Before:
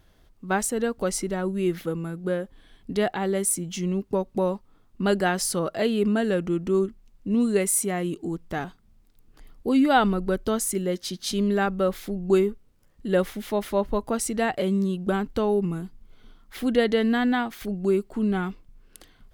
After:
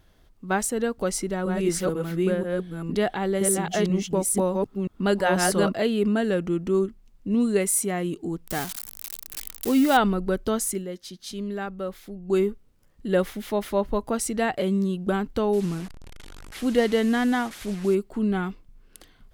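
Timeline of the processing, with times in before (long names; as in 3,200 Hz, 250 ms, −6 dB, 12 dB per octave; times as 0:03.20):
0:00.97–0:05.74: delay that plays each chunk backwards 488 ms, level −1 dB
0:08.47–0:09.97: spike at every zero crossing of −20.5 dBFS
0:10.69–0:12.43: duck −8 dB, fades 0.18 s
0:15.53–0:17.95: linear delta modulator 64 kbit/s, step −35.5 dBFS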